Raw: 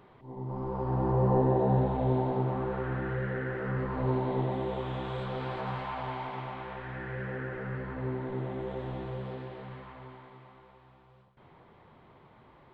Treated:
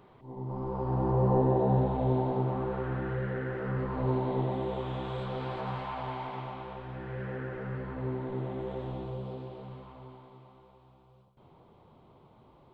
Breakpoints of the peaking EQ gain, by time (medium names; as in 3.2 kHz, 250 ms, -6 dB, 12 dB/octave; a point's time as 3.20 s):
peaking EQ 1.8 kHz 0.78 oct
6.35 s -4 dB
6.89 s -13 dB
7.27 s -5 dB
8.76 s -5 dB
9.20 s -15 dB